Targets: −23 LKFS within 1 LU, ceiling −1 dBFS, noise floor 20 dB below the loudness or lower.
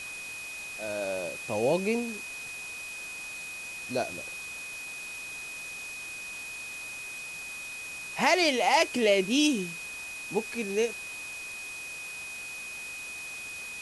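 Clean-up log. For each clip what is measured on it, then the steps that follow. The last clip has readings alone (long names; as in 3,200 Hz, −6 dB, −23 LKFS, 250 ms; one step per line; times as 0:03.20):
interfering tone 2,500 Hz; level of the tone −38 dBFS; background noise floor −40 dBFS; target noise floor −51 dBFS; integrated loudness −31.0 LKFS; sample peak −9.0 dBFS; target loudness −23.0 LKFS
→ notch filter 2,500 Hz, Q 30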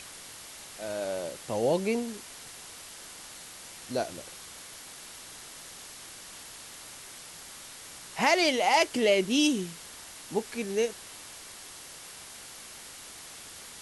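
interfering tone none found; background noise floor −46 dBFS; target noise floor −48 dBFS
→ broadband denoise 6 dB, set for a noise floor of −46 dBFS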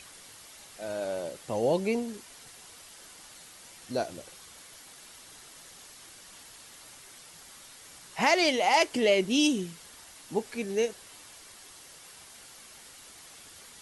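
background noise floor −51 dBFS; integrated loudness −28.0 LKFS; sample peak −10.0 dBFS; target loudness −23.0 LKFS
→ level +5 dB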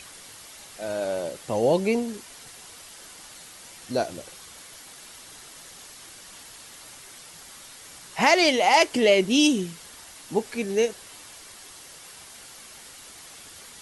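integrated loudness −23.0 LKFS; sample peak −5.0 dBFS; background noise floor −46 dBFS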